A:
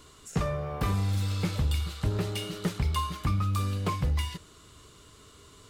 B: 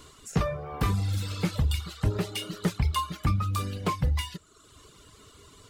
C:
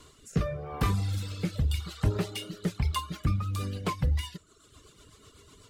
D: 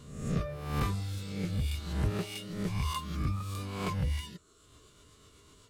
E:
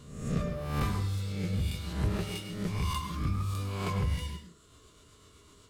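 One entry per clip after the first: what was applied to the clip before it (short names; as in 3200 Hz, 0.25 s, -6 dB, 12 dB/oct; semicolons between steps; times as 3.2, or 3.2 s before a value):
reverb removal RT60 0.95 s; gain +3 dB
rotary speaker horn 0.85 Hz, later 8 Hz, at 2.63
spectral swells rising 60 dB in 0.83 s; gain -6.5 dB
plate-style reverb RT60 0.55 s, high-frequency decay 0.6×, pre-delay 90 ms, DRR 5.5 dB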